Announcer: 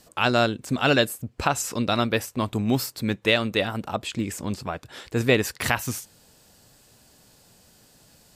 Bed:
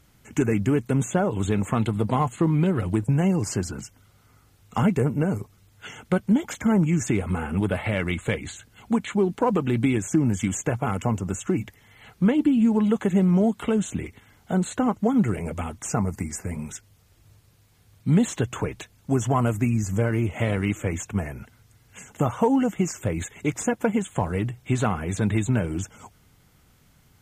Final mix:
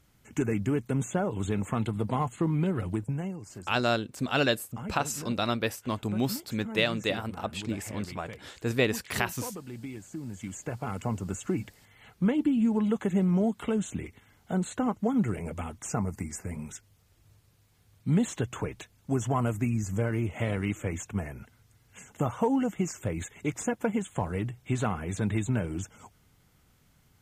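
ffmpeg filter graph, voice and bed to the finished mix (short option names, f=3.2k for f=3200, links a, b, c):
-filter_complex "[0:a]adelay=3500,volume=-5.5dB[a];[1:a]volume=6.5dB,afade=t=out:st=2.85:d=0.54:silence=0.251189,afade=t=in:st=10.22:d=1.07:silence=0.237137[b];[a][b]amix=inputs=2:normalize=0"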